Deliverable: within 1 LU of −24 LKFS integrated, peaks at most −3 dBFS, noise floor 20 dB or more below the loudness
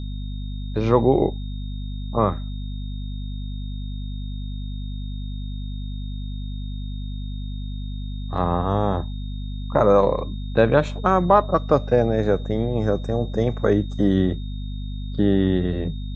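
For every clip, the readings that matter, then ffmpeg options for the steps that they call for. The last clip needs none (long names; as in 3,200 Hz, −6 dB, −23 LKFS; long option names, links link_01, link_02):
mains hum 50 Hz; hum harmonics up to 250 Hz; level of the hum −27 dBFS; interfering tone 3,700 Hz; level of the tone −46 dBFS; integrated loudness −23.5 LKFS; sample peak −2.0 dBFS; target loudness −24.0 LKFS
→ -af "bandreject=frequency=50:width_type=h:width=4,bandreject=frequency=100:width_type=h:width=4,bandreject=frequency=150:width_type=h:width=4,bandreject=frequency=200:width_type=h:width=4,bandreject=frequency=250:width_type=h:width=4"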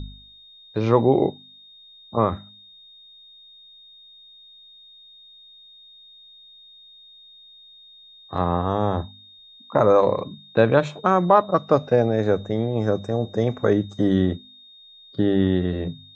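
mains hum none found; interfering tone 3,700 Hz; level of the tone −46 dBFS
→ -af "bandreject=frequency=3700:width=30"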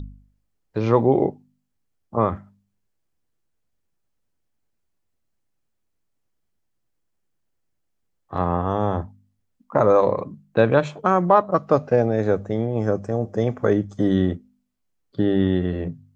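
interfering tone none found; integrated loudness −21.5 LKFS; sample peak −3.0 dBFS; target loudness −24.0 LKFS
→ -af "volume=-2.5dB"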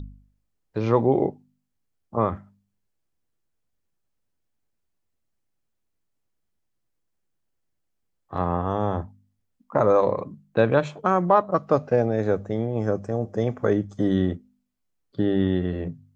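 integrated loudness −24.0 LKFS; sample peak −5.5 dBFS; background noise floor −76 dBFS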